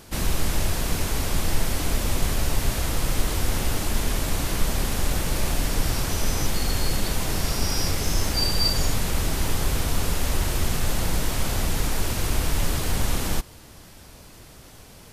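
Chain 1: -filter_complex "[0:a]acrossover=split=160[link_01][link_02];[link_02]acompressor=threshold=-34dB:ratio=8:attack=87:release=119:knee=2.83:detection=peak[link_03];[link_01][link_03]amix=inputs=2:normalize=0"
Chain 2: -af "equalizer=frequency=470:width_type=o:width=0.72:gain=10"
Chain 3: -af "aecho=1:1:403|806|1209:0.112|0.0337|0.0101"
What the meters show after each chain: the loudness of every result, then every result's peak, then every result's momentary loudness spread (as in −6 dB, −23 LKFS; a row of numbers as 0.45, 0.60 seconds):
−27.5, −25.0, −26.0 LKFS; −9.0, −7.5, −8.0 dBFS; 5, 2, 2 LU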